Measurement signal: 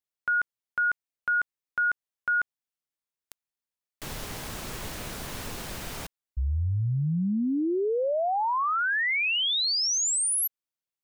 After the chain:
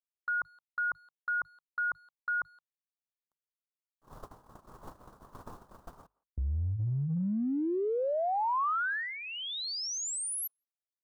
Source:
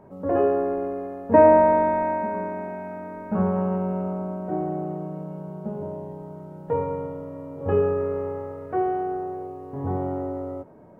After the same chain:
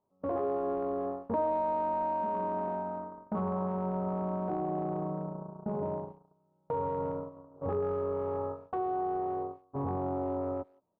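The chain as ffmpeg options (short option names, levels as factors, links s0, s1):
-filter_complex "[0:a]bandreject=f=50:t=h:w=6,bandreject=f=100:t=h:w=6,bandreject=f=150:t=h:w=6,agate=range=0.0141:threshold=0.0224:ratio=16:release=204:detection=peak,highshelf=f=1600:t=q:w=3:g=-12,acompressor=threshold=0.02:ratio=5:attack=0.9:release=55:knee=6:detection=peak,asplit=2[s0][s1];[s1]adelay=170,highpass=300,lowpass=3400,asoftclip=type=hard:threshold=0.0178,volume=0.0447[s2];[s0][s2]amix=inputs=2:normalize=0,volume=1.58"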